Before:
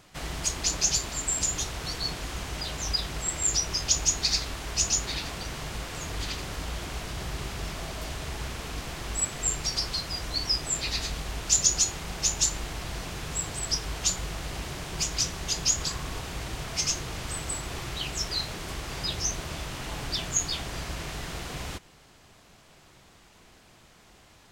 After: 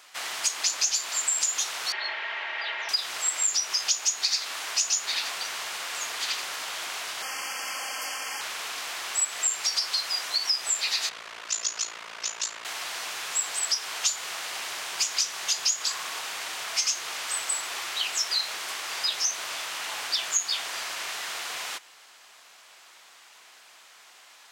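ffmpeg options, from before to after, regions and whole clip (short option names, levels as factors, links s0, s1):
-filter_complex "[0:a]asettb=1/sr,asplit=3[s0][s1][s2];[s0]atrim=end=1.924[s3];[s1]atrim=start=1.92:end=2.89,asetpts=PTS-STARTPTS,afade=t=in:d=0.004:c=qsin,afade=t=out:st=0.966:d=0.004:c=qsin,aecho=1:1:4.1:0.54,atrim=end_sample=42777,afreqshift=-96,highpass=290,equalizer=f=870:t=q:w=4:g=3,equalizer=f=1200:t=q:w=4:g=-4,equalizer=f=1900:t=q:w=4:g=8,lowpass=f=3100:w=0.5412,lowpass=f=3100:w=1.3066[s4];[s2]atrim=start=2.886[s5];[s3][s4]acrossfade=d=0.004:c1=hsin:c2=qsin[s6];[s6][s5]acrossfade=d=0.004:c1=qsin:c2=hsin,asettb=1/sr,asplit=3[s7][s8][s9];[s7]atrim=end=7.224[s10];[s8]atrim=start=7.22:end=8.41,asetpts=PTS-STARTPTS,afade=t=in:d=0.004:c=qsin,afade=t=out:st=1.186:d=0.004:c=qsin,asuperstop=centerf=3800:order=12:qfactor=3.6,aecho=1:1:3.8:0.66,atrim=end_sample=52479[s11];[s9]atrim=start=8.406[s12];[s10][s11]acrossfade=d=0.004:c1=hsin:c2=qsin[s13];[s13][s12]acrossfade=d=0.004:c1=qsin:c2=hsin,asettb=1/sr,asplit=3[s14][s15][s16];[s14]atrim=end=11.094[s17];[s15]atrim=start=11.09:end=12.65,asetpts=PTS-STARTPTS,afade=t=in:d=0.004:c=qsin,afade=t=out:st=1.556:d=0.004:c=qsin,aemphasis=mode=reproduction:type=75fm,bandreject=f=800:w=6.1,aeval=exprs='val(0)*sin(2*PI*28*n/s)':c=same[s18];[s16]atrim=start=12.646[s19];[s17][s18]acrossfade=d=0.004:c1=hsin:c2=qsin[s20];[s20][s19]acrossfade=d=0.004:c1=qsin:c2=hsin,highpass=990,acompressor=threshold=0.0355:ratio=4,volume=2.11"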